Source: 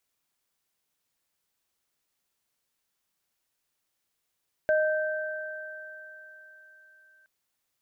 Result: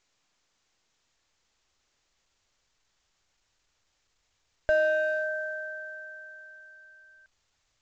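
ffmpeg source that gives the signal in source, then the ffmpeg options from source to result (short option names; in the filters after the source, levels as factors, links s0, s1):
-f lavfi -i "aevalsrc='0.1*pow(10,-3*t/2.75)*sin(2*PI*619*t)+0.0447*pow(10,-3*t/4.93)*sin(2*PI*1560*t)':d=2.57:s=44100"
-filter_complex "[0:a]asubboost=boost=7.5:cutoff=77,asplit=2[s0][s1];[s1]asoftclip=type=hard:threshold=0.0376,volume=0.473[s2];[s0][s2]amix=inputs=2:normalize=0" -ar 16000 -c:a pcm_mulaw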